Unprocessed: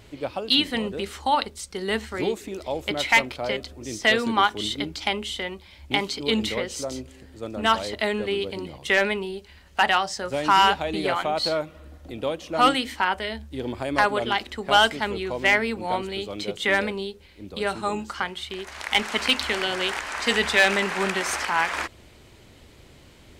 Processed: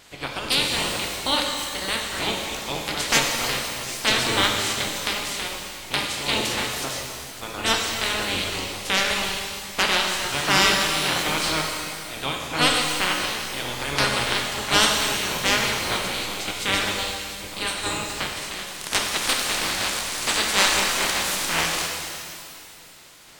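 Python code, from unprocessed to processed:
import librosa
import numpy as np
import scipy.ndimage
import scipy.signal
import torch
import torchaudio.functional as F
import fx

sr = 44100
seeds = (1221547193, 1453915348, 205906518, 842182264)

y = fx.spec_clip(x, sr, under_db=26)
y = fx.rev_shimmer(y, sr, seeds[0], rt60_s=2.3, semitones=12, shimmer_db=-8, drr_db=0.5)
y = y * librosa.db_to_amplitude(-2.0)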